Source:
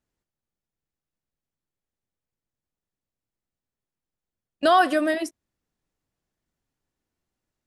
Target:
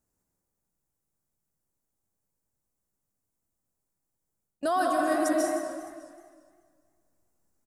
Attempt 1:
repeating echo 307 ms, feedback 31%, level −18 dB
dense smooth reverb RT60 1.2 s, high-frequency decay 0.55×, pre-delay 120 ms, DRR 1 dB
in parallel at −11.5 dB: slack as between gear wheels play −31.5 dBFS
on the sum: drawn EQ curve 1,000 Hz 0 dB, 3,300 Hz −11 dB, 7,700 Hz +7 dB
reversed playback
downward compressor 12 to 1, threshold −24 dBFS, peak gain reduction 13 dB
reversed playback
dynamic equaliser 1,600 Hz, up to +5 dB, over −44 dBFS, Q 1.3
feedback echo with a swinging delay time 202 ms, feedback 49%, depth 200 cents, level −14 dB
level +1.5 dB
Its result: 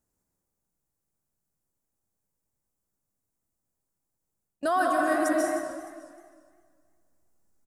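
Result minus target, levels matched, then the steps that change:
slack as between gear wheels: distortion +7 dB; 2,000 Hz band +3.5 dB
change: slack as between gear wheels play −39.5 dBFS
change: dynamic equaliser 4,500 Hz, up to +5 dB, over −44 dBFS, Q 1.3

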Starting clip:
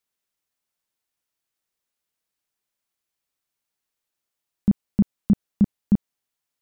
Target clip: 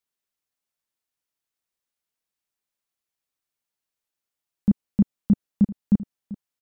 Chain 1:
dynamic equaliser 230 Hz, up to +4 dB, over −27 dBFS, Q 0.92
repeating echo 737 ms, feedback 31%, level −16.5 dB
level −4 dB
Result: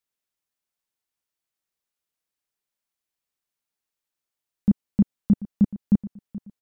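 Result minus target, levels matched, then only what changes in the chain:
echo 272 ms early
change: repeating echo 1,009 ms, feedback 31%, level −16.5 dB

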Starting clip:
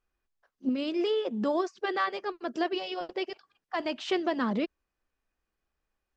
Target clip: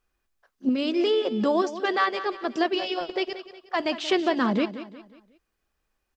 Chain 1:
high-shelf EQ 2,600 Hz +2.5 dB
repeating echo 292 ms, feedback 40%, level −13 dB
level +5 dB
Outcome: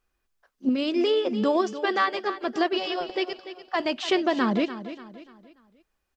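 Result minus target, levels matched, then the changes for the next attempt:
echo 111 ms late
change: repeating echo 181 ms, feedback 40%, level −13 dB

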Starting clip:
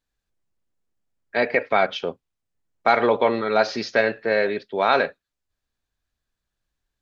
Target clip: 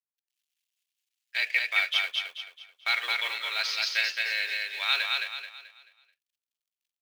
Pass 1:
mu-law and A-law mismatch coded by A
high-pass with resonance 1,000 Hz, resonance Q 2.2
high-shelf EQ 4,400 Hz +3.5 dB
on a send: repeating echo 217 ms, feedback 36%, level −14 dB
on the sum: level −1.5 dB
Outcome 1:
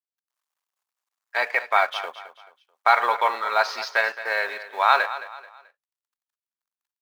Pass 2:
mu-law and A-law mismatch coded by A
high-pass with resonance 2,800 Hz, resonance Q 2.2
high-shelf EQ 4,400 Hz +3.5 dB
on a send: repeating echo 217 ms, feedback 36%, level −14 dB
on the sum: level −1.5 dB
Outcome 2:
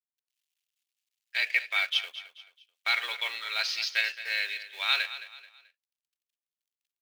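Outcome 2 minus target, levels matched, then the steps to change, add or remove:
echo-to-direct −11 dB
change: repeating echo 217 ms, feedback 36%, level −3 dB

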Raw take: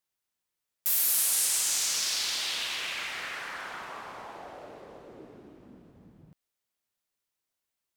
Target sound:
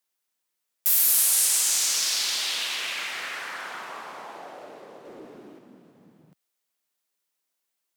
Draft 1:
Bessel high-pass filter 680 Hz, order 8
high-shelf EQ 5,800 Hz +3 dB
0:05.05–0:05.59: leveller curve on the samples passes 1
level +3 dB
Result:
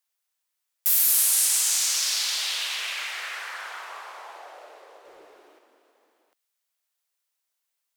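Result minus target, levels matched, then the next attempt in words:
250 Hz band −15.5 dB
Bessel high-pass filter 210 Hz, order 8
high-shelf EQ 5,800 Hz +3 dB
0:05.05–0:05.59: leveller curve on the samples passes 1
level +3 dB

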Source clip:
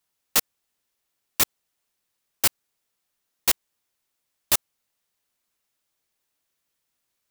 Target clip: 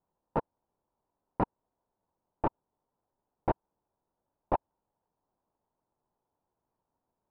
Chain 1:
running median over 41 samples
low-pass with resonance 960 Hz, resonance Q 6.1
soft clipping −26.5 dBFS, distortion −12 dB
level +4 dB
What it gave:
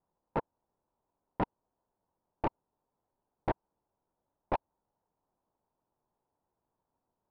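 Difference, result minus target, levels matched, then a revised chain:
soft clipping: distortion +10 dB
running median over 41 samples
low-pass with resonance 960 Hz, resonance Q 6.1
soft clipping −18 dBFS, distortion −22 dB
level +4 dB

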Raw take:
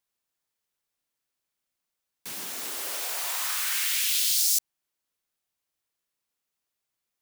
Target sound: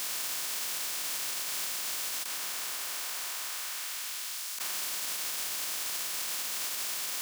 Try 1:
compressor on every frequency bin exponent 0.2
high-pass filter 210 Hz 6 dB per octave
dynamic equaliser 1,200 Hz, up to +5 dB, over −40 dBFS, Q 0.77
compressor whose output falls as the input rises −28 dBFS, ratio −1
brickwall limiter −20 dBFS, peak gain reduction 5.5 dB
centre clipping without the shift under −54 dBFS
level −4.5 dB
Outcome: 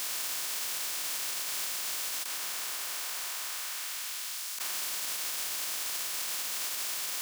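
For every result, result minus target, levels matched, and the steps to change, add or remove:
centre clipping without the shift: distortion +17 dB; 125 Hz band −3.0 dB
change: centre clipping without the shift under −65 dBFS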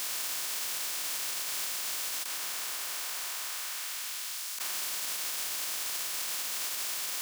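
125 Hz band −3.0 dB
change: high-pass filter 94 Hz 6 dB per octave

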